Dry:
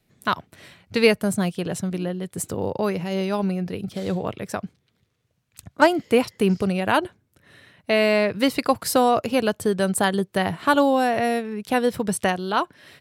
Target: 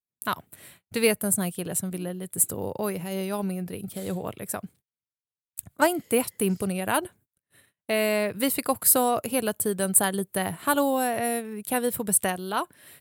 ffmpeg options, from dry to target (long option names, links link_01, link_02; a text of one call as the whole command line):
ffmpeg -i in.wav -af "aexciter=amount=4.9:drive=8.4:freq=7900,agate=range=-33dB:threshold=-47dB:ratio=16:detection=peak,volume=-5.5dB" out.wav